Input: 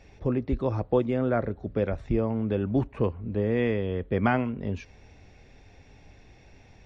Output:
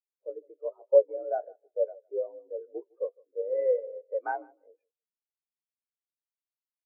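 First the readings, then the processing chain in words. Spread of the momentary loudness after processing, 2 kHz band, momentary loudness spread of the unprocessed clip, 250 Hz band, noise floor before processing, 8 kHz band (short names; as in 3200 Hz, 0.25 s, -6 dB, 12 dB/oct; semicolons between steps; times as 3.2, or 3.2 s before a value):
17 LU, -10.5 dB, 5 LU, -27.0 dB, -54 dBFS, n/a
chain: mistuned SSB +60 Hz 350–2300 Hz; flange 1.2 Hz, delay 7.1 ms, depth 9.5 ms, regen +71%; feedback echo 0.156 s, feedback 34%, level -11 dB; spectral expander 2.5:1; gain +9 dB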